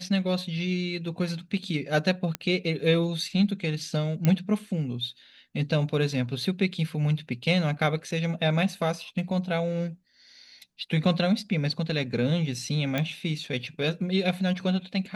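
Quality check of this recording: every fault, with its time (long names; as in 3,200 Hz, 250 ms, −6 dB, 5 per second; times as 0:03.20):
0:02.35: click −13 dBFS
0:04.25: click −11 dBFS
0:12.98: click −14 dBFS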